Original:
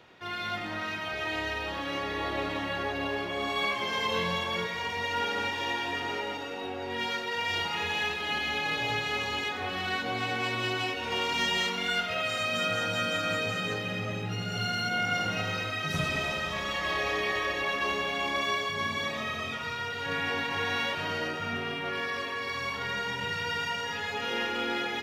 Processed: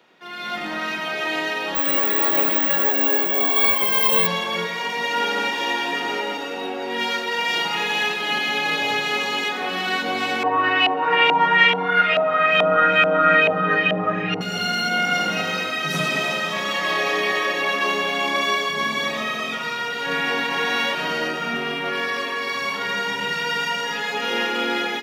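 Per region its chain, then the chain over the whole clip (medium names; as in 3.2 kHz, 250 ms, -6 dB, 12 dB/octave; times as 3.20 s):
1.75–4.27 s: brick-wall FIR low-pass 12 kHz + careless resampling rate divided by 2×, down filtered, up zero stuff
10.43–14.41 s: comb 6.5 ms, depth 98% + LFO low-pass saw up 2.3 Hz 710–2900 Hz
whole clip: steep high-pass 160 Hz 36 dB/octave; treble shelf 10 kHz +4 dB; level rider gain up to 9 dB; trim -1 dB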